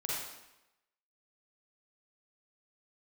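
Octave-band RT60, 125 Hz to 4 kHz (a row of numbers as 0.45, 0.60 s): 0.85, 0.90, 0.90, 0.95, 0.90, 0.85 s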